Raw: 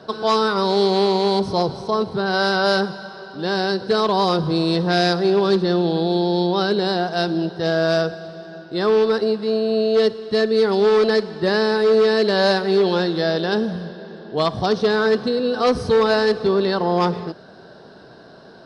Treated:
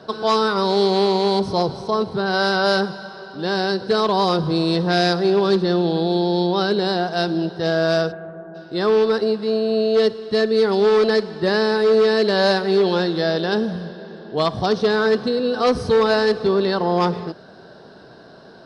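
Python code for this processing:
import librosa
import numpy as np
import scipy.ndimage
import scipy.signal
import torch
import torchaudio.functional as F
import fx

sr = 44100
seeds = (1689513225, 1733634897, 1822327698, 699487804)

y = fx.lowpass(x, sr, hz=fx.line((8.11, 2400.0), (8.54, 1300.0)), slope=24, at=(8.11, 8.54), fade=0.02)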